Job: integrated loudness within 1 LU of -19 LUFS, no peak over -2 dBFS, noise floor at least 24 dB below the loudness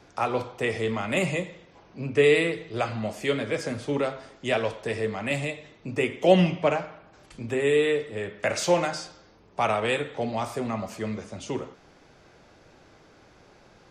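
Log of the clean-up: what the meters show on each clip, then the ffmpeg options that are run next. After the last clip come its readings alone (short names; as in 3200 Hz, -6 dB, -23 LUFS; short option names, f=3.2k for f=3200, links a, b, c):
loudness -26.5 LUFS; peak -5.0 dBFS; loudness target -19.0 LUFS
-> -af "volume=7.5dB,alimiter=limit=-2dB:level=0:latency=1"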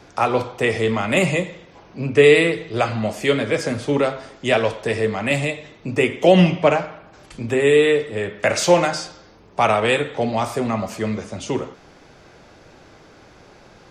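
loudness -19.5 LUFS; peak -2.0 dBFS; noise floor -48 dBFS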